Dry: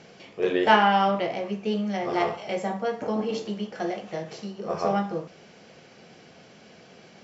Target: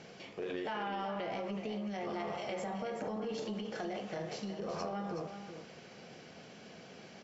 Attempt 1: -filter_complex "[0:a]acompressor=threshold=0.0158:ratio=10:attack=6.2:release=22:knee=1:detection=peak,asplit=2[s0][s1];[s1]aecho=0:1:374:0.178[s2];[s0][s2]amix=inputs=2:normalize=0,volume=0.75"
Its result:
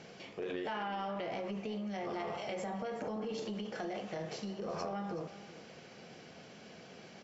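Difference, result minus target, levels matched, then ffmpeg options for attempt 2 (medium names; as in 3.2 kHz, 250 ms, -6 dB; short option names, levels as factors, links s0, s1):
echo-to-direct -6.5 dB
-filter_complex "[0:a]acompressor=threshold=0.0158:ratio=10:attack=6.2:release=22:knee=1:detection=peak,asplit=2[s0][s1];[s1]aecho=0:1:374:0.376[s2];[s0][s2]amix=inputs=2:normalize=0,volume=0.75"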